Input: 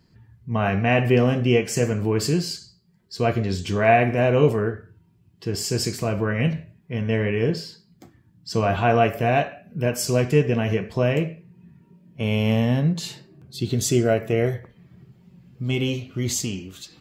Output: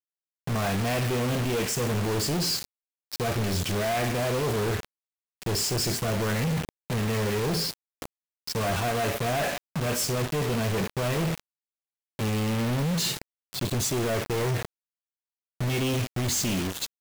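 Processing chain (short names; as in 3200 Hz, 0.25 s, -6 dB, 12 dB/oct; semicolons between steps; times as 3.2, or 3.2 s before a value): reverse; compressor 12:1, threshold -27 dBFS, peak gain reduction 16 dB; reverse; companded quantiser 2-bit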